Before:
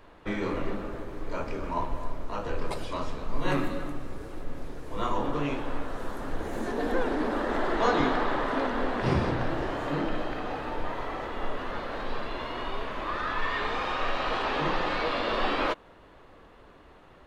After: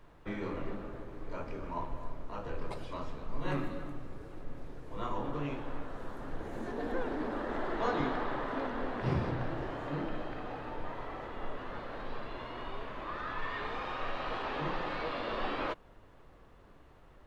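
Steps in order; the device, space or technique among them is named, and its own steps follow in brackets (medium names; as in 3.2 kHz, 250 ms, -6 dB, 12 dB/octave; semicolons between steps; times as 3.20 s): car interior (peaking EQ 130 Hz +4.5 dB 0.65 oct; treble shelf 4.8 kHz -8 dB; brown noise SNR 23 dB); trim -7.5 dB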